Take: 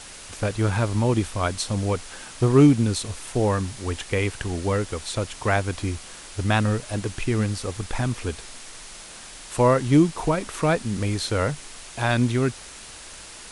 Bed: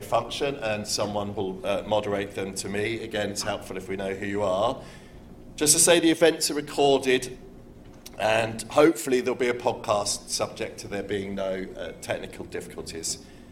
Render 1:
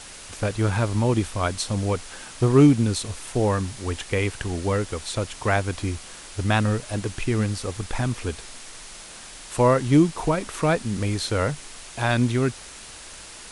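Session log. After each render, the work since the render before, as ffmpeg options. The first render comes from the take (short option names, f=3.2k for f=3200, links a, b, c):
-af anull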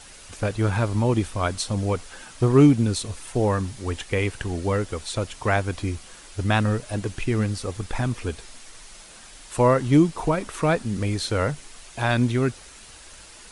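-af "afftdn=nr=6:nf=-42"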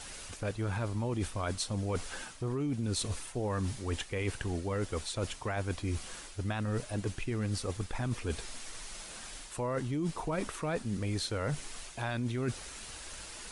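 -af "alimiter=limit=-15.5dB:level=0:latency=1:release=27,areverse,acompressor=threshold=-31dB:ratio=6,areverse"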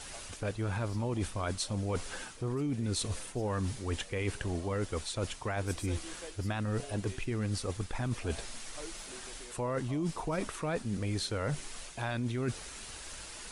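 -filter_complex "[1:a]volume=-28.5dB[a];[0:a][a]amix=inputs=2:normalize=0"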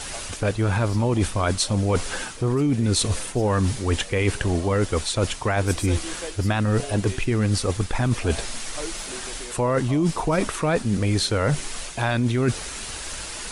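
-af "volume=12dB"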